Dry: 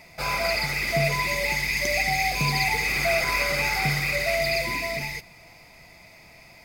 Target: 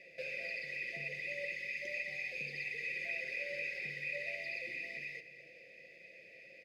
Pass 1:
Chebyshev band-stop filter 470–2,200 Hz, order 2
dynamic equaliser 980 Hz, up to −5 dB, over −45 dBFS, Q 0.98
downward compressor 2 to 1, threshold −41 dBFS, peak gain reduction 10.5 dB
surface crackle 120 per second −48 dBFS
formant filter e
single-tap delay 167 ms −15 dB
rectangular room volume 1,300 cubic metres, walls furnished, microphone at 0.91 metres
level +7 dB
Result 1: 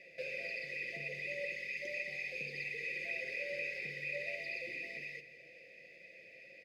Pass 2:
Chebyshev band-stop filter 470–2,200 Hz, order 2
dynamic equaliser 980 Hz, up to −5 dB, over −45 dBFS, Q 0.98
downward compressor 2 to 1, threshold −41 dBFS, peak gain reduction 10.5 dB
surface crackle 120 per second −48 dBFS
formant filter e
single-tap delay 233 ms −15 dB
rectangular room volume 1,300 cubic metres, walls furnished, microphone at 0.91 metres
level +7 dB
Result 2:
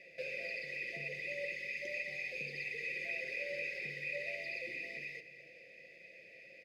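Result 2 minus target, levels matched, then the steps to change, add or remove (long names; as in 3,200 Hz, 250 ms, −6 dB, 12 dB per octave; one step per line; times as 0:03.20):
500 Hz band +2.5 dB
change: dynamic equaliser 460 Hz, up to −5 dB, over −45 dBFS, Q 0.98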